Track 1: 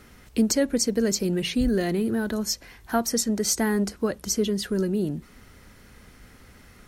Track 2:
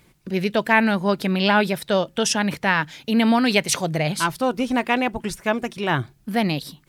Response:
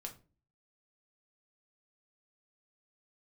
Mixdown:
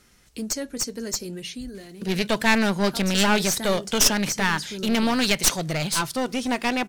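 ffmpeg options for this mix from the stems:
-filter_complex "[0:a]flanger=delay=5.5:depth=2.4:regen=-65:speed=0.42:shape=triangular,volume=2dB,afade=type=out:start_time=1.19:duration=0.66:silence=0.266073,afade=type=in:start_time=2.86:duration=0.62:silence=0.375837,asplit=2[link_01][link_02];[link_02]volume=-13dB[link_03];[1:a]adelay=1750,volume=-5dB,asplit=2[link_04][link_05];[link_05]volume=-15.5dB[link_06];[2:a]atrim=start_sample=2205[link_07];[link_03][link_06]amix=inputs=2:normalize=0[link_08];[link_08][link_07]afir=irnorm=-1:irlink=0[link_09];[link_01][link_04][link_09]amix=inputs=3:normalize=0,equalizer=frequency=6700:width_type=o:width=2.2:gain=10.5,dynaudnorm=framelen=680:gausssize=5:maxgain=11.5dB,aeval=exprs='clip(val(0),-1,0.0596)':channel_layout=same"

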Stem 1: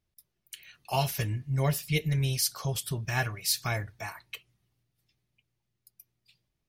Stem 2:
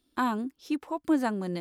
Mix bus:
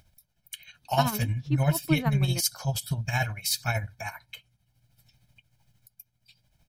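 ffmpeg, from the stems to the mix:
ffmpeg -i stem1.wav -i stem2.wav -filter_complex "[0:a]aecho=1:1:1.3:0.75,acompressor=mode=upward:threshold=-50dB:ratio=2.5,volume=2dB[link_01];[1:a]lowpass=4000,adelay=800,volume=-1dB[link_02];[link_01][link_02]amix=inputs=2:normalize=0,tremolo=f=13:d=0.57" out.wav

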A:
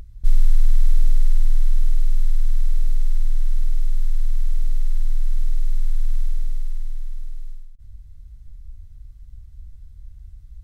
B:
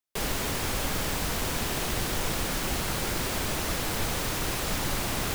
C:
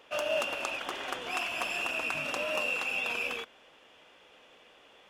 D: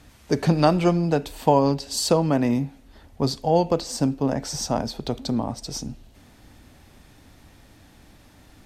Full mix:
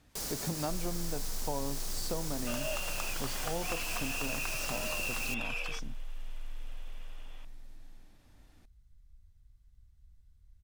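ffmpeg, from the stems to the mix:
ffmpeg -i stem1.wav -i stem2.wav -i stem3.wav -i stem4.wav -filter_complex "[0:a]lowshelf=frequency=160:gain=-8.5,adelay=450,volume=-12dB[link_01];[1:a]highshelf=frequency=3900:width_type=q:width=1.5:gain=8.5,volume=-11.5dB[link_02];[2:a]highpass=540,adelay=2350,volume=-1dB[link_03];[3:a]volume=-13dB[link_04];[link_01][link_02][link_03][link_04]amix=inputs=4:normalize=0,acompressor=threshold=-34dB:ratio=2" out.wav

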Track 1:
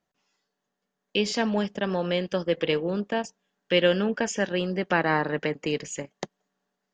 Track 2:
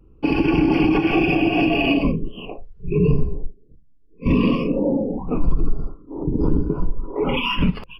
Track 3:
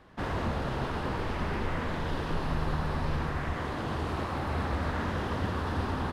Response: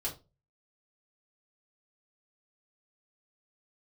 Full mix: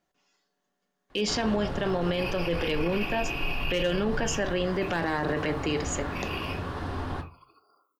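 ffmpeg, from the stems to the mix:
-filter_complex "[0:a]asoftclip=type=hard:threshold=-13.5dB,volume=0.5dB,asplit=2[link_01][link_02];[link_02]volume=-8.5dB[link_03];[1:a]aemphasis=mode=production:type=riaa,acompressor=threshold=-25dB:ratio=6,highpass=1200,adelay=1900,volume=-2.5dB,afade=type=out:start_time=6.4:duration=0.43:silence=0.316228,asplit=2[link_04][link_05];[link_05]volume=-9.5dB[link_06];[2:a]adelay=1100,volume=-5.5dB,asplit=2[link_07][link_08];[link_08]volume=-3.5dB[link_09];[link_04][link_07]amix=inputs=2:normalize=0,acompressor=threshold=-33dB:ratio=6,volume=0dB[link_10];[3:a]atrim=start_sample=2205[link_11];[link_03][link_06][link_09]amix=inputs=3:normalize=0[link_12];[link_12][link_11]afir=irnorm=-1:irlink=0[link_13];[link_01][link_10][link_13]amix=inputs=3:normalize=0,alimiter=limit=-18.5dB:level=0:latency=1:release=19"

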